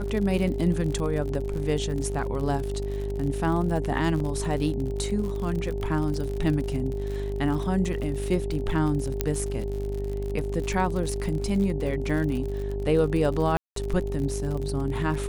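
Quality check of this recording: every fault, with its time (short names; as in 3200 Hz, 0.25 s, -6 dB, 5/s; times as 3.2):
buzz 50 Hz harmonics 18 -31 dBFS
crackle 58/s -31 dBFS
tone 400 Hz -32 dBFS
4.2 gap 2.9 ms
9.21 pop -9 dBFS
13.57–13.76 gap 0.193 s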